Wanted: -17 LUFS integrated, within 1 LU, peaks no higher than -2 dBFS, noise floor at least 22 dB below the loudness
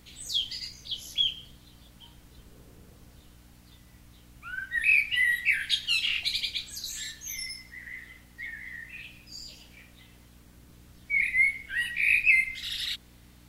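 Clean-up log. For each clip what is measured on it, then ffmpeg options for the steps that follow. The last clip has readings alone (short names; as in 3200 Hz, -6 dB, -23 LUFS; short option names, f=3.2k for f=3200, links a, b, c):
hum 60 Hz; harmonics up to 300 Hz; hum level -54 dBFS; loudness -26.0 LUFS; peak -9.5 dBFS; loudness target -17.0 LUFS
-> -af "bandreject=f=60:t=h:w=4,bandreject=f=120:t=h:w=4,bandreject=f=180:t=h:w=4,bandreject=f=240:t=h:w=4,bandreject=f=300:t=h:w=4"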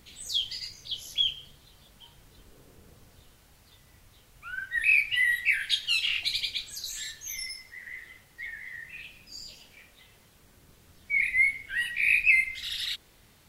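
hum none; loudness -26.0 LUFS; peak -9.5 dBFS; loudness target -17.0 LUFS
-> -af "volume=9dB,alimiter=limit=-2dB:level=0:latency=1"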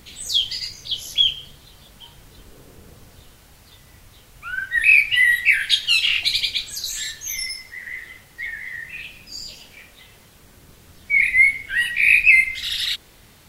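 loudness -17.0 LUFS; peak -2.0 dBFS; noise floor -50 dBFS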